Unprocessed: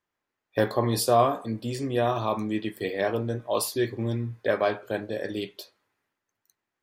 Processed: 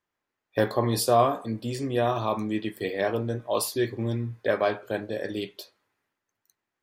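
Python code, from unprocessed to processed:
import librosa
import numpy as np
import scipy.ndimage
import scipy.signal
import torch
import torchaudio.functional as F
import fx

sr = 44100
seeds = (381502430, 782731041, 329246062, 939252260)

y = x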